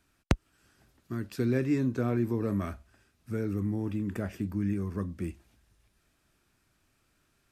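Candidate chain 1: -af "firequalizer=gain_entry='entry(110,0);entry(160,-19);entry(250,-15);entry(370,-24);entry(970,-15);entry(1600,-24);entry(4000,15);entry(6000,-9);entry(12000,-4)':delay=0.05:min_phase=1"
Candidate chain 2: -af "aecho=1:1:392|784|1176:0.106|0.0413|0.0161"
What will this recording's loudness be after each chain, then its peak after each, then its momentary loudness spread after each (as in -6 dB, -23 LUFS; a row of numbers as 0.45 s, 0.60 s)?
-39.0 LUFS, -32.0 LUFS; -11.5 dBFS, -8.5 dBFS; 10 LU, 11 LU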